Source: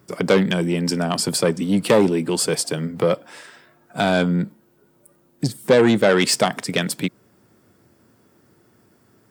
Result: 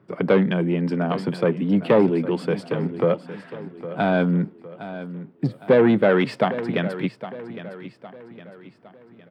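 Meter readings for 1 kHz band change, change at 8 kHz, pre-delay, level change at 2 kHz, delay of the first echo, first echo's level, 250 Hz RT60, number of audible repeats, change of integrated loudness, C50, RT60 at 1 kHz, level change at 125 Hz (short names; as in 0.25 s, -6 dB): -2.0 dB, under -25 dB, none, -4.0 dB, 0.81 s, -13.5 dB, none, 3, -2.0 dB, none, none, -0.5 dB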